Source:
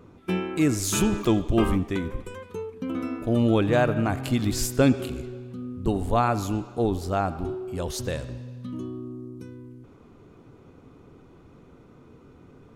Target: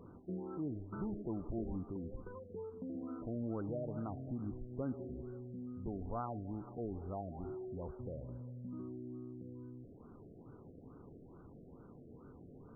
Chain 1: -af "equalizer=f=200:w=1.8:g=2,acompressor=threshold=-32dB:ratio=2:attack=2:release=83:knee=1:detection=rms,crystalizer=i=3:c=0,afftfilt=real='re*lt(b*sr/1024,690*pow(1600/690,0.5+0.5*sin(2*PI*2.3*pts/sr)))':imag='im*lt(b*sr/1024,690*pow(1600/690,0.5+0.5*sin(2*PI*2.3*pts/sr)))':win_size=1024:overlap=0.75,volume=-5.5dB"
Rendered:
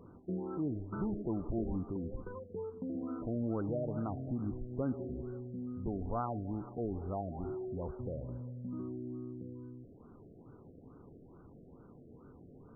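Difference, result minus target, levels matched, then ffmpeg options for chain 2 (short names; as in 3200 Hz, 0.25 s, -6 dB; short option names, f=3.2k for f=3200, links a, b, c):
compressor: peak gain reduction -4.5 dB
-af "equalizer=f=200:w=1.8:g=2,acompressor=threshold=-41dB:ratio=2:attack=2:release=83:knee=1:detection=rms,crystalizer=i=3:c=0,afftfilt=real='re*lt(b*sr/1024,690*pow(1600/690,0.5+0.5*sin(2*PI*2.3*pts/sr)))':imag='im*lt(b*sr/1024,690*pow(1600/690,0.5+0.5*sin(2*PI*2.3*pts/sr)))':win_size=1024:overlap=0.75,volume=-5.5dB"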